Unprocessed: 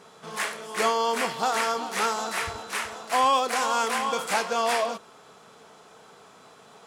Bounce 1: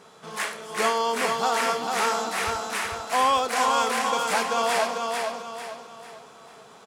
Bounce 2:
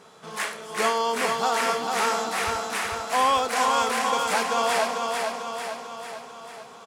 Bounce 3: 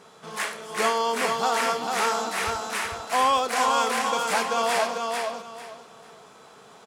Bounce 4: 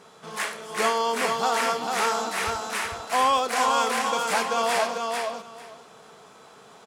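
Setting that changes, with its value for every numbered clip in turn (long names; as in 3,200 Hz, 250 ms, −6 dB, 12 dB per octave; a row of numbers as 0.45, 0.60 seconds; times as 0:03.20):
repeating echo, feedback: 39, 57, 24, 16%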